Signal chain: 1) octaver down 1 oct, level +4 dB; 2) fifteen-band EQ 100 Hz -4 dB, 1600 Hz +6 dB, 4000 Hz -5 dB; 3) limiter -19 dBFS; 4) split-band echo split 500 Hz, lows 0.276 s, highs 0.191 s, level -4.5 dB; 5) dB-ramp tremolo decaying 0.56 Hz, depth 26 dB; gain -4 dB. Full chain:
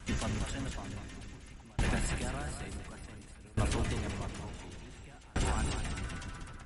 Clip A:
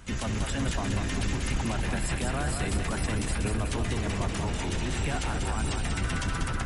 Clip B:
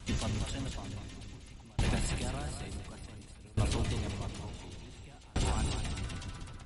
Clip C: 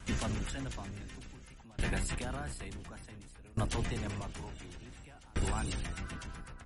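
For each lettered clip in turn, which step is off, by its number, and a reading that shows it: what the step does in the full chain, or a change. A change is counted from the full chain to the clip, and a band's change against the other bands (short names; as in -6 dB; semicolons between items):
5, momentary loudness spread change -15 LU; 2, 2 kHz band -3.0 dB; 4, crest factor change -2.5 dB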